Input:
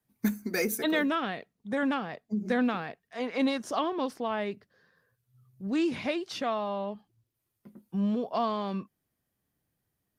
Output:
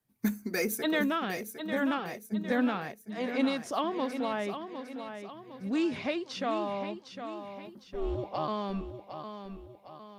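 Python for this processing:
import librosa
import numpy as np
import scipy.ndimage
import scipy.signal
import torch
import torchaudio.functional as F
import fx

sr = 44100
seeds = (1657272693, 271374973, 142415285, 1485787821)

y = fx.lowpass(x, sr, hz=7700.0, slope=12, at=(5.82, 6.62))
y = fx.ring_mod(y, sr, carrier_hz=fx.line((7.83, 270.0), (8.47, 71.0)), at=(7.83, 8.47), fade=0.02)
y = fx.echo_feedback(y, sr, ms=757, feedback_pct=45, wet_db=-9.0)
y = y * 10.0 ** (-1.5 / 20.0)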